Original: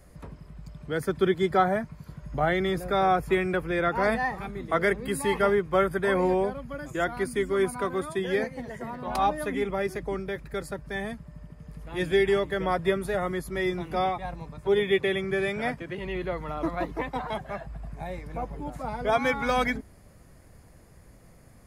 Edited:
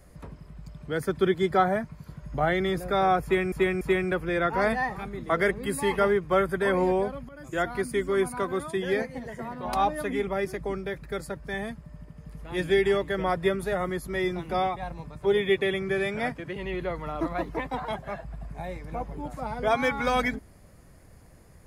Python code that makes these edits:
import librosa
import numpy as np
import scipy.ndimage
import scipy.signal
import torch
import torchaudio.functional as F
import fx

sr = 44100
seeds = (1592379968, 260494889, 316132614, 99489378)

y = fx.edit(x, sr, fx.repeat(start_s=3.23, length_s=0.29, count=3),
    fx.fade_in_from(start_s=6.71, length_s=0.29, floor_db=-15.0), tone=tone)